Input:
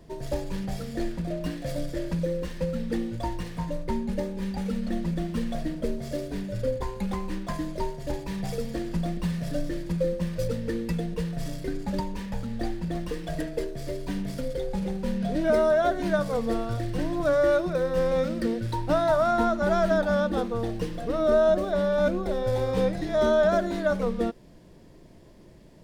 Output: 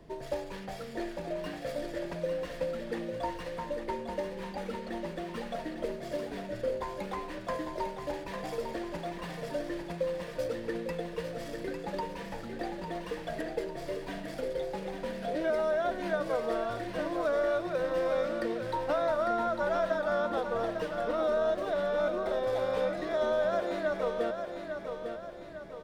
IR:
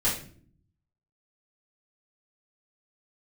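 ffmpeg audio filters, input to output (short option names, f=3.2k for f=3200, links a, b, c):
-filter_complex "[0:a]bass=f=250:g=-5,treble=f=4k:g=-8,acrossover=split=370|1900[a][b][c];[a]acompressor=threshold=-46dB:ratio=4[d];[b]acompressor=threshold=-29dB:ratio=4[e];[c]acompressor=threshold=-46dB:ratio=4[f];[d][e][f]amix=inputs=3:normalize=0,aecho=1:1:851|1702|2553|3404|4255|5106:0.447|0.214|0.103|0.0494|0.0237|0.0114"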